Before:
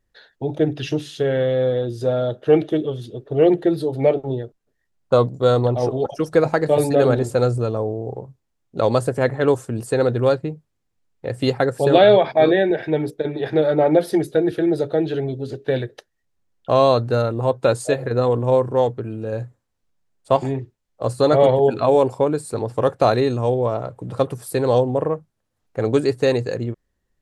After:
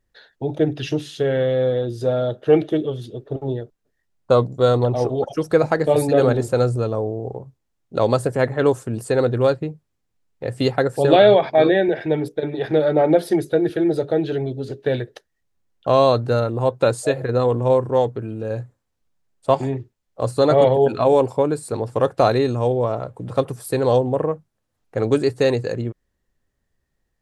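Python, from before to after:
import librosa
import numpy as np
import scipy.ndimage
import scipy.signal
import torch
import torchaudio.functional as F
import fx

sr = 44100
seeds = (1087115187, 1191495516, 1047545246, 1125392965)

y = fx.edit(x, sr, fx.cut(start_s=3.36, length_s=0.82), tone=tone)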